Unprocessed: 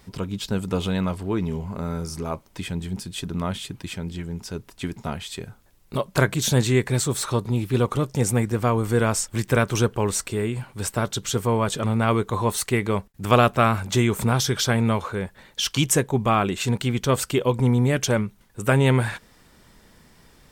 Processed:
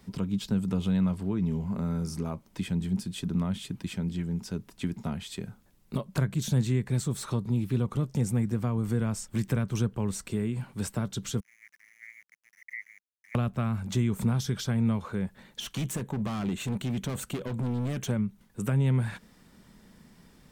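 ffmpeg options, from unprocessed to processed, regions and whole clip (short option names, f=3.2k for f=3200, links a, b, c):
-filter_complex "[0:a]asettb=1/sr,asplit=3[a][b][c];[a]atrim=end=11.404[d];[b]atrim=start=11.4:end=13.35,asetpts=PTS-STARTPTS,afade=t=in:d=0.004:c=qsin,afade=t=out:st=1.946:d=0.004:c=qsin,asuperpass=centerf=2000:order=8:qfactor=4.6,aeval=exprs='val(0)*gte(abs(val(0)),0.00266)':c=same[e];[c]atrim=start=13.346[f];[d][e]acrossfade=d=0.004:c1=hsin:c2=qsin[g];[g][f]acrossfade=d=0.004:c1=qsin:c2=hsin,asettb=1/sr,asplit=3[h][i][j];[h]atrim=end=15.604[k];[i]atrim=start=15.6:end=18.09,asetpts=PTS-STARTPTS,afade=t=in:d=0.004:c=qsin,afade=t=out:st=2.486:d=0.004:c=qsin,equalizer=f=5k:w=5.8:g=-13,asoftclip=type=hard:threshold=-25dB[l];[j]atrim=start=18.086[m];[k][l]acrossfade=d=0.004:c1=hsin:c2=qsin[n];[n][m]acrossfade=d=0.004:c1=qsin:c2=hsin,acrossover=split=160[o][p];[p]acompressor=threshold=-29dB:ratio=4[q];[o][q]amix=inputs=2:normalize=0,equalizer=f=200:t=o:w=0.93:g=10,volume=-6dB"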